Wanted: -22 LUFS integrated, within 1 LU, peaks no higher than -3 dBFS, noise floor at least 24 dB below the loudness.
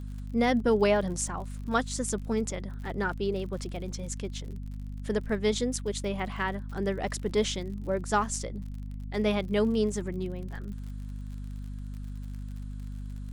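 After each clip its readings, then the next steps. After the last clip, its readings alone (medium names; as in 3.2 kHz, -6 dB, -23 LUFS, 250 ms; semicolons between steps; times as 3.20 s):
tick rate 51 per s; hum 50 Hz; highest harmonic 250 Hz; hum level -35 dBFS; loudness -31.0 LUFS; peak level -12.5 dBFS; loudness target -22.0 LUFS
-> de-click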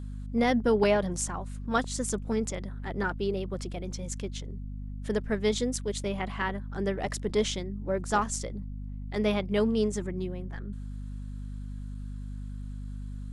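tick rate 0.075 per s; hum 50 Hz; highest harmonic 250 Hz; hum level -35 dBFS
-> hum notches 50/100/150/200/250 Hz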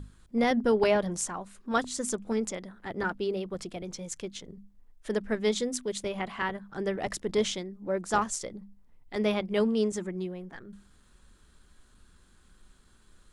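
hum not found; loudness -30.5 LUFS; peak level -13.5 dBFS; loudness target -22.0 LUFS
-> trim +8.5 dB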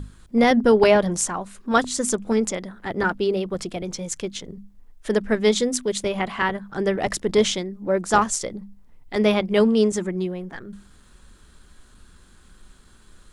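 loudness -22.0 LUFS; peak level -5.0 dBFS; noise floor -52 dBFS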